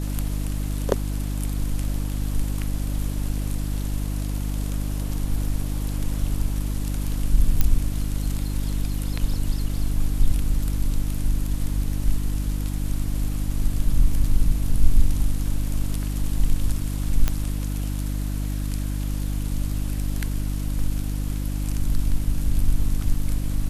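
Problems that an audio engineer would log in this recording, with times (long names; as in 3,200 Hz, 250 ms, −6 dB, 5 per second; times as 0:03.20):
mains hum 50 Hz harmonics 6 −26 dBFS
0:07.61: click −5 dBFS
0:17.28: click −7 dBFS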